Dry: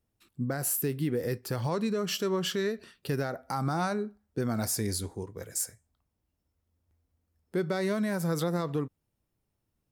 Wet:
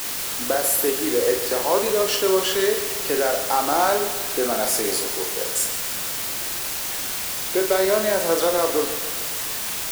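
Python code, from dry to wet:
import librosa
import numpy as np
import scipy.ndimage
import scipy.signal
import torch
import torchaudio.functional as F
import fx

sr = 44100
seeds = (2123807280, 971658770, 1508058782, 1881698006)

p1 = scipy.signal.sosfilt(scipy.signal.butter(4, 320.0, 'highpass', fs=sr, output='sos'), x)
p2 = fx.peak_eq(p1, sr, hz=630.0, db=6.5, octaves=1.1)
p3 = fx.quant_dither(p2, sr, seeds[0], bits=6, dither='triangular')
p4 = fx.doubler(p3, sr, ms=42.0, db=-5.5)
p5 = p4 + fx.echo_feedback(p4, sr, ms=142, feedback_pct=56, wet_db=-12.0, dry=0)
y = p5 * librosa.db_to_amplitude(7.0)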